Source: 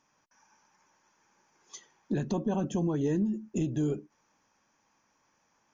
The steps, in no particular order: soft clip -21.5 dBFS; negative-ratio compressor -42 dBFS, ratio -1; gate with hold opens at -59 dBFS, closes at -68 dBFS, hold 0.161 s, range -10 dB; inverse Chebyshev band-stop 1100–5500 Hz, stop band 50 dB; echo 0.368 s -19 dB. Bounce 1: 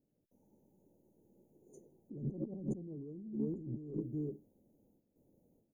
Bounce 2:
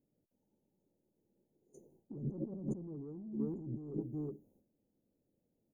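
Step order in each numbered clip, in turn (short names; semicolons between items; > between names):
echo > gate with hold > inverse Chebyshev band-stop > negative-ratio compressor > soft clip; inverse Chebyshev band-stop > soft clip > echo > gate with hold > negative-ratio compressor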